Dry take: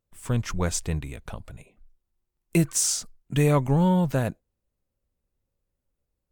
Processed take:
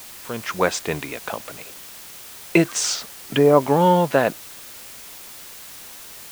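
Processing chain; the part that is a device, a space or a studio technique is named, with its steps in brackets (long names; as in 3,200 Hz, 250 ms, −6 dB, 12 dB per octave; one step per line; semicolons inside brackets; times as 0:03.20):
0:02.93–0:03.61: treble cut that deepens with the level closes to 920 Hz, closed at −19 dBFS
dictaphone (band-pass filter 370–3,600 Hz; automatic gain control gain up to 13 dB; tape wow and flutter; white noise bed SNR 17 dB)
level +1 dB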